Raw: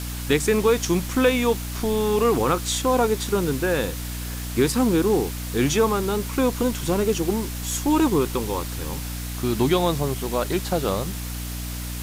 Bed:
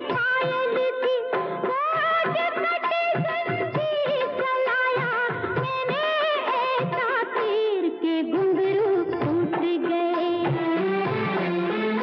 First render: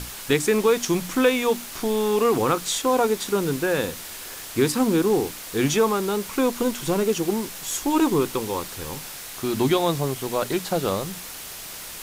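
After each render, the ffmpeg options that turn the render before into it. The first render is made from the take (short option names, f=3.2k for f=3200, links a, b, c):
-af "bandreject=f=60:t=h:w=6,bandreject=f=120:t=h:w=6,bandreject=f=180:t=h:w=6,bandreject=f=240:t=h:w=6,bandreject=f=300:t=h:w=6"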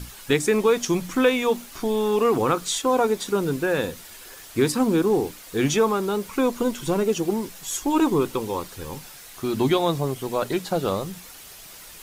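-af "afftdn=nr=8:nf=-37"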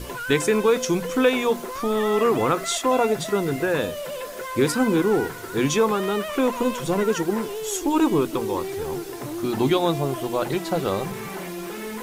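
-filter_complex "[1:a]volume=-8.5dB[a];[0:a][a]amix=inputs=2:normalize=0"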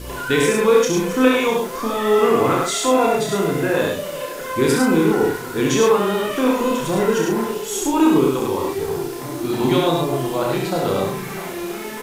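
-filter_complex "[0:a]asplit=2[a][b];[b]adelay=31,volume=-4dB[c];[a][c]amix=inputs=2:normalize=0,asplit=2[d][e];[e]aecho=0:1:66|104|657:0.668|0.631|0.112[f];[d][f]amix=inputs=2:normalize=0"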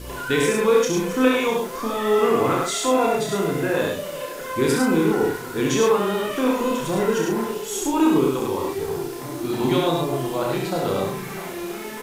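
-af "volume=-3dB"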